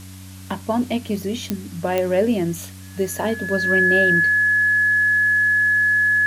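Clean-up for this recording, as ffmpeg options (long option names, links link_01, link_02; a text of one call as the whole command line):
ffmpeg -i in.wav -af "adeclick=threshold=4,bandreject=frequency=94.2:width_type=h:width=4,bandreject=frequency=188.4:width_type=h:width=4,bandreject=frequency=282.6:width_type=h:width=4,bandreject=frequency=1700:width=30,afwtdn=0.0063" out.wav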